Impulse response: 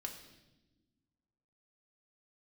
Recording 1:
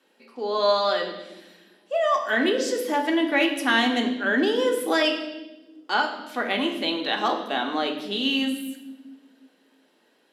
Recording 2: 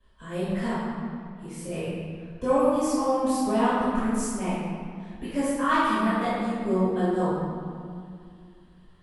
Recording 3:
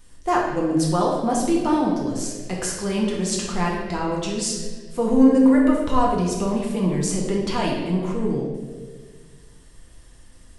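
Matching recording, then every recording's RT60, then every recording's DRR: 1; no single decay rate, 2.2 s, 1.6 s; 1.5 dB, -16.0 dB, -3.5 dB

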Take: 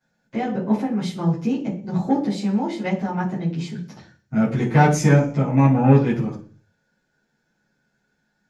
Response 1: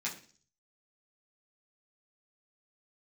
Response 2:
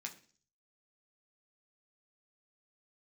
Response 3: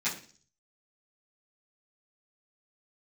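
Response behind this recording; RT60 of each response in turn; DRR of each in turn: 3; 0.45 s, 0.45 s, 0.45 s; -6.0 dB, 1.5 dB, -13.0 dB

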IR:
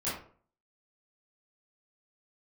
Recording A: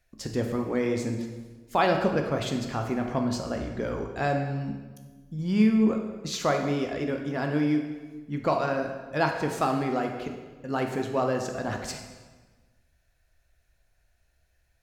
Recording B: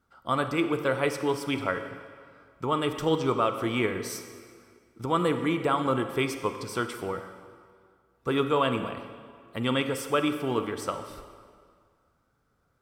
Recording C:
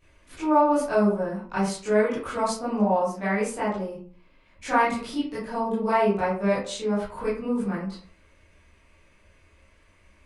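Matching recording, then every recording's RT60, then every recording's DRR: C; 1.4 s, 2.0 s, 0.45 s; 3.0 dB, 8.0 dB, -11.5 dB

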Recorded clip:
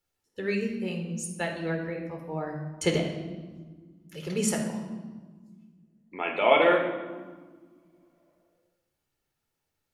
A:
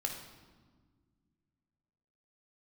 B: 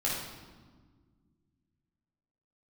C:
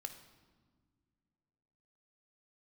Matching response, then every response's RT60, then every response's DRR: A; 1.6 s, 1.6 s, no single decay rate; 2.0 dB, -6.5 dB, 7.0 dB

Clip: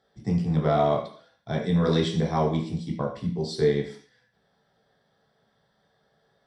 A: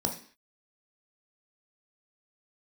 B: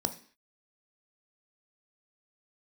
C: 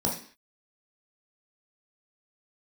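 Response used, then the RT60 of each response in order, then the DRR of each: C; 0.45 s, 0.45 s, 0.45 s; 2.5 dB, 8.0 dB, -2.5 dB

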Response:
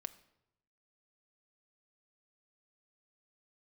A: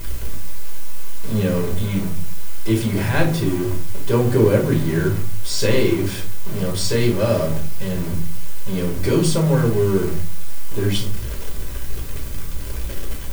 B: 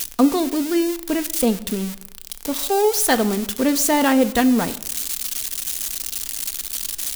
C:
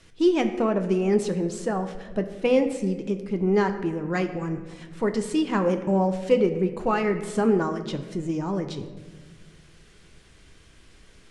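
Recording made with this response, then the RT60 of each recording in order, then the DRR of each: B; 0.40 s, 0.85 s, no single decay rate; -0.5 dB, 10.0 dB, 6.5 dB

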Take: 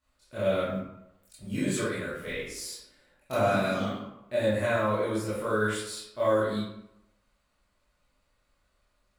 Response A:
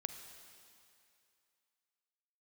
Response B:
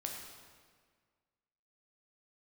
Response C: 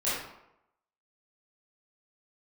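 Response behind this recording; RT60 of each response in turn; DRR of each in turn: C; 2.5 s, 1.7 s, 0.85 s; 7.5 dB, 0.0 dB, -11.5 dB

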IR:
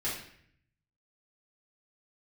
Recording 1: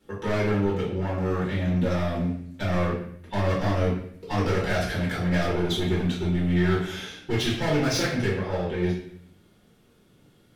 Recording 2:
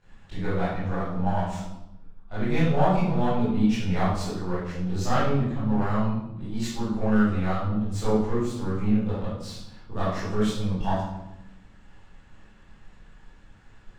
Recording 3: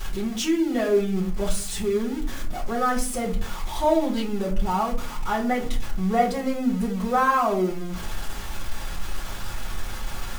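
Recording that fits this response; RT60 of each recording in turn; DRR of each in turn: 1; 0.65 s, 0.95 s, 0.40 s; -8.0 dB, -13.5 dB, -5.5 dB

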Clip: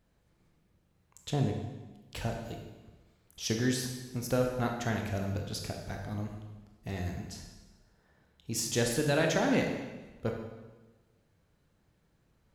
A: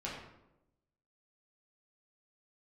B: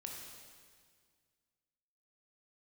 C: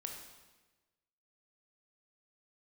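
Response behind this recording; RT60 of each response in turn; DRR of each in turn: C; 0.90 s, 1.9 s, 1.2 s; -6.5 dB, 0.0 dB, 2.0 dB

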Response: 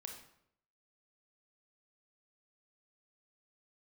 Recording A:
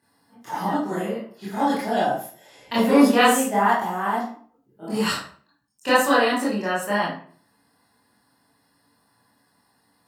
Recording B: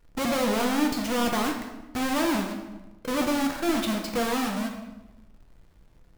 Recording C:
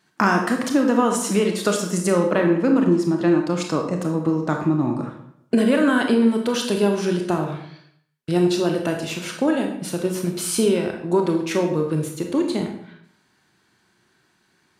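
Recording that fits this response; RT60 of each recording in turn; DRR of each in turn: C; 0.45 s, 1.1 s, 0.70 s; -10.0 dB, 1.5 dB, 2.5 dB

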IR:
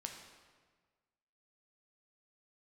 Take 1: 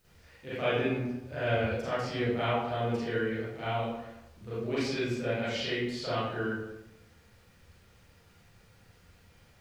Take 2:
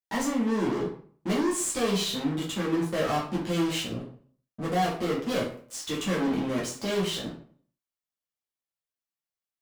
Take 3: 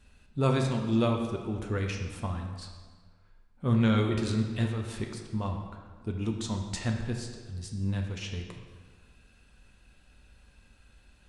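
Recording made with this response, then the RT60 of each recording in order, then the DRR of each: 3; 0.95 s, 0.50 s, 1.5 s; -13.0 dB, -5.5 dB, 2.0 dB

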